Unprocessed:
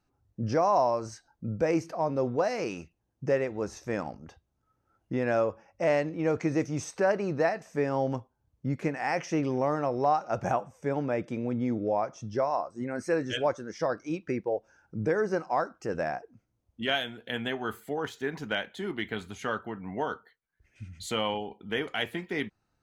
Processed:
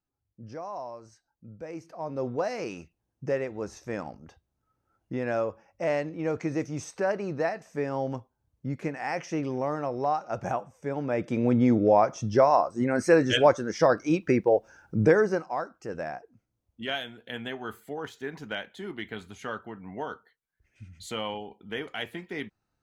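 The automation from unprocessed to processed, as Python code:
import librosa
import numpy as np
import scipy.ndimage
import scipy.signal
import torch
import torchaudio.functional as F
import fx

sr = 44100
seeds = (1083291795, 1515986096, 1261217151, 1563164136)

y = fx.gain(x, sr, db=fx.line((1.7, -13.5), (2.26, -2.0), (10.96, -2.0), (11.48, 8.0), (15.09, 8.0), (15.54, -3.5)))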